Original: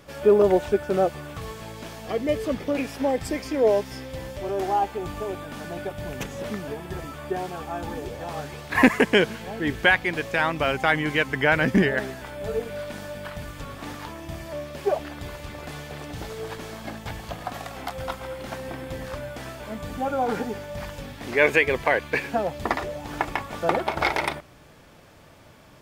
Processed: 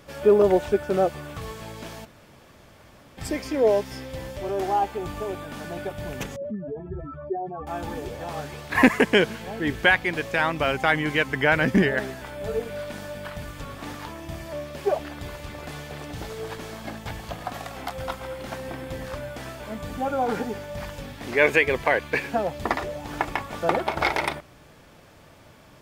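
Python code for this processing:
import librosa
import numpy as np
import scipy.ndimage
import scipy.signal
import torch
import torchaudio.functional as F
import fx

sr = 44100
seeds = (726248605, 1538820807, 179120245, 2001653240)

y = fx.spec_expand(x, sr, power=2.4, at=(6.36, 7.67))
y = fx.edit(y, sr, fx.room_tone_fill(start_s=2.05, length_s=1.13, crossfade_s=0.02), tone=tone)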